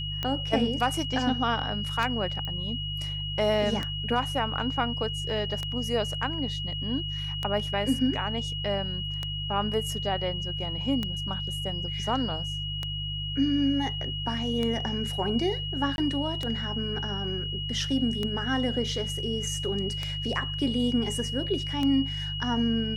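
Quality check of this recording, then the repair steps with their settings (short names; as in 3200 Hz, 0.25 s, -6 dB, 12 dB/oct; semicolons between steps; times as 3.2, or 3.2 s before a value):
hum 50 Hz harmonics 3 -35 dBFS
tick 33 1/3 rpm -16 dBFS
tone 2900 Hz -33 dBFS
2.45 pop -22 dBFS
15.96–15.98 gap 21 ms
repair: de-click; de-hum 50 Hz, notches 3; notch 2900 Hz, Q 30; interpolate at 15.96, 21 ms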